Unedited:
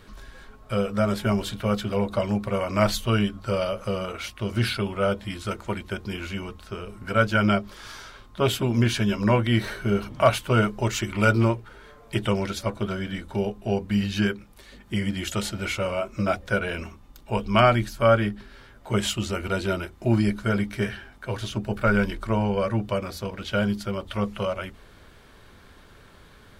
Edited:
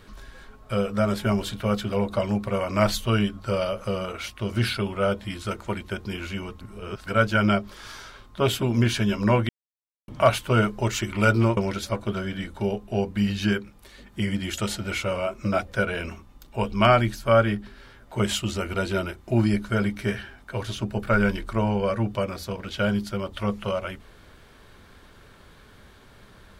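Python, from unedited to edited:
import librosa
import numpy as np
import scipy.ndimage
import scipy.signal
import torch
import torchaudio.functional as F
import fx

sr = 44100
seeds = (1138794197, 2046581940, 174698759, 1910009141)

y = fx.edit(x, sr, fx.reverse_span(start_s=6.61, length_s=0.45),
    fx.silence(start_s=9.49, length_s=0.59),
    fx.cut(start_s=11.57, length_s=0.74), tone=tone)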